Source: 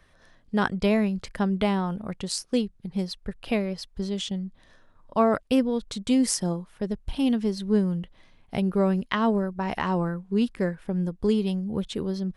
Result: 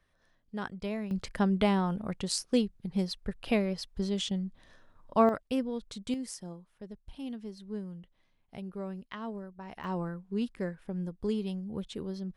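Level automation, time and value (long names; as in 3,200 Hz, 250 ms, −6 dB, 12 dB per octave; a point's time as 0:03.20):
−13 dB
from 0:01.11 −2 dB
from 0:05.29 −9 dB
from 0:06.14 −16 dB
from 0:09.84 −8.5 dB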